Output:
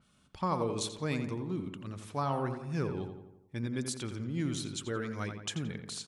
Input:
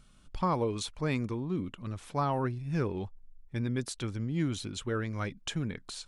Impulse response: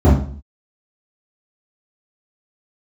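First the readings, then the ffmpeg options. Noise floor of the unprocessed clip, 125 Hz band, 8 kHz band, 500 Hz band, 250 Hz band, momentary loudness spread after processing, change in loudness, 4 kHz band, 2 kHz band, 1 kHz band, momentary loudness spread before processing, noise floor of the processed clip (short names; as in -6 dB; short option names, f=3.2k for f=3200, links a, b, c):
-58 dBFS, -3.0 dB, +2.5 dB, -2.0 dB, -2.0 dB, 7 LU, -2.0 dB, 0.0 dB, -2.0 dB, -2.0 dB, 8 LU, -67 dBFS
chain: -filter_complex "[0:a]highpass=95,asplit=2[a][b];[b]adelay=86,lowpass=f=2.7k:p=1,volume=-7dB,asplit=2[c][d];[d]adelay=86,lowpass=f=2.7k:p=1,volume=0.55,asplit=2[e][f];[f]adelay=86,lowpass=f=2.7k:p=1,volume=0.55,asplit=2[g][h];[h]adelay=86,lowpass=f=2.7k:p=1,volume=0.55,asplit=2[i][j];[j]adelay=86,lowpass=f=2.7k:p=1,volume=0.55,asplit=2[k][l];[l]adelay=86,lowpass=f=2.7k:p=1,volume=0.55,asplit=2[m][n];[n]adelay=86,lowpass=f=2.7k:p=1,volume=0.55[o];[c][e][g][i][k][m][o]amix=inputs=7:normalize=0[p];[a][p]amix=inputs=2:normalize=0,adynamicequalizer=threshold=0.00251:dfrequency=4100:dqfactor=0.7:tfrequency=4100:tqfactor=0.7:attack=5:release=100:ratio=0.375:range=3:mode=boostabove:tftype=highshelf,volume=-3dB"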